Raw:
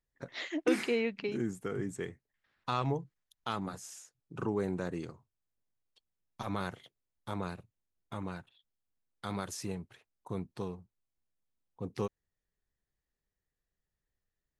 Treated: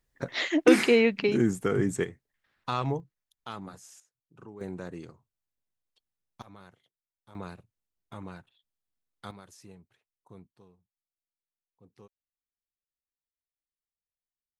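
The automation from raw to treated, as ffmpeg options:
ffmpeg -i in.wav -af "asetnsamples=nb_out_samples=441:pad=0,asendcmd='2.04 volume volume 2.5dB;3 volume volume -4dB;4 volume volume -13.5dB;4.61 volume volume -3dB;6.42 volume volume -15.5dB;7.35 volume volume -2.5dB;9.31 volume volume -12.5dB;10.48 volume volume -19.5dB',volume=10dB" out.wav

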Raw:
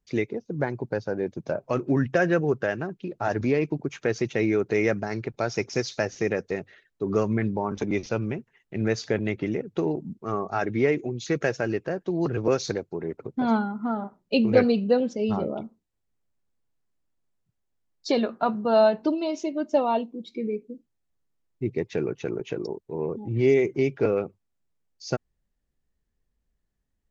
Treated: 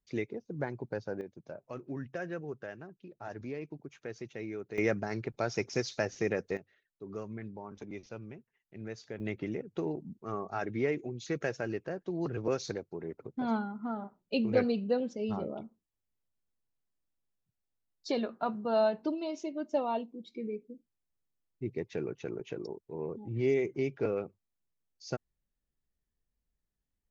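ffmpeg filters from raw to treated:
ffmpeg -i in.wav -af "asetnsamples=nb_out_samples=441:pad=0,asendcmd='1.21 volume volume -16.5dB;4.78 volume volume -5.5dB;6.57 volume volume -17dB;9.2 volume volume -8.5dB',volume=-8.5dB" out.wav

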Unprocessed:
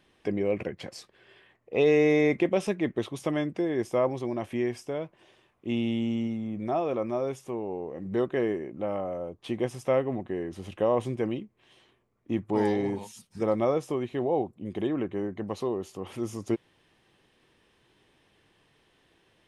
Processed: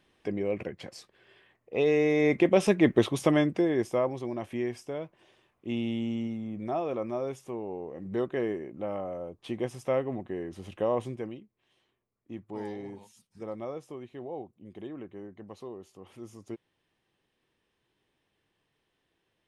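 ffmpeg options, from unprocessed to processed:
ffmpeg -i in.wav -af "volume=7.5dB,afade=type=in:start_time=2.15:duration=0.81:silence=0.298538,afade=type=out:start_time=2.96:duration=1.1:silence=0.298538,afade=type=out:start_time=10.95:duration=0.44:silence=0.354813" out.wav

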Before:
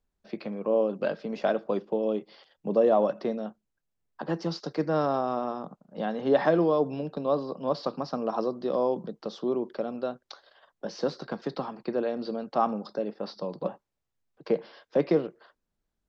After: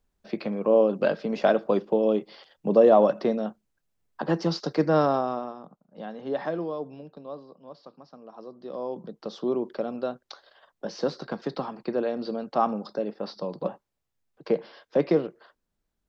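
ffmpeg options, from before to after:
ffmpeg -i in.wav -af "volume=23.5dB,afade=type=out:start_time=4.98:duration=0.56:silence=0.251189,afade=type=out:start_time=6.48:duration=1.21:silence=0.316228,afade=type=in:start_time=8.35:duration=0.53:silence=0.298538,afade=type=in:start_time=8.88:duration=0.56:silence=0.398107" out.wav

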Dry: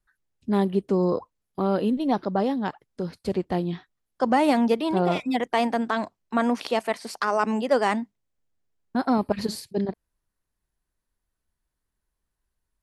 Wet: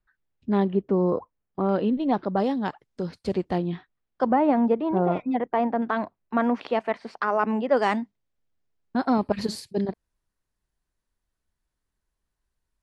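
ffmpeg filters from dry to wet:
ffmpeg -i in.wav -af "asetnsamples=nb_out_samples=441:pad=0,asendcmd='0.73 lowpass f 1900;1.69 lowpass f 3200;2.37 lowpass f 7700;3.58 lowpass f 3200;4.31 lowpass f 1300;5.82 lowpass f 2300;7.77 lowpass f 5500;9.33 lowpass f 9700',lowpass=3300" out.wav

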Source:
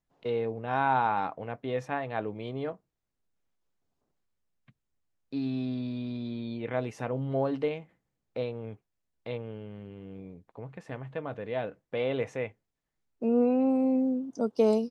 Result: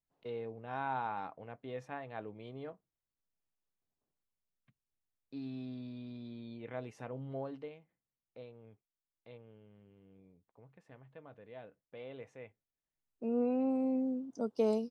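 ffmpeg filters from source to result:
ffmpeg -i in.wav -af "volume=-0.5dB,afade=type=out:start_time=7.3:duration=0.42:silence=0.473151,afade=type=in:start_time=12.36:duration=1.21:silence=0.298538" out.wav

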